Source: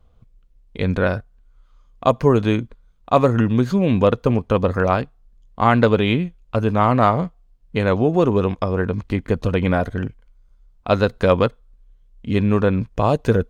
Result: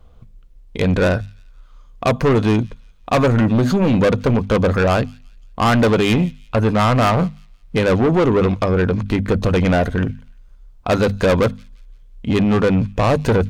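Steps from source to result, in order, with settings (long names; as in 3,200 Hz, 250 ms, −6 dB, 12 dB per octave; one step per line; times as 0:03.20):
mains-hum notches 50/100/150/200/250 Hz
soft clipping −19.5 dBFS, distortion −7 dB
on a send: delay with a high-pass on its return 173 ms, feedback 36%, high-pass 3,100 Hz, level −20 dB
on the sum: level +8.5 dB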